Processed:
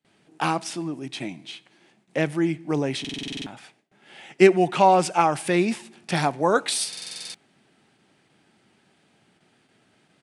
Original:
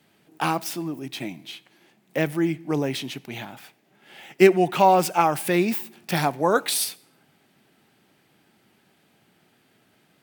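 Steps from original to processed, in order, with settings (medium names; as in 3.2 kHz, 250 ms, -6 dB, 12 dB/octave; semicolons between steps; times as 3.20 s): resampled via 22.05 kHz; gate with hold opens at -53 dBFS; buffer glitch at 3.00/6.88 s, samples 2048, times 9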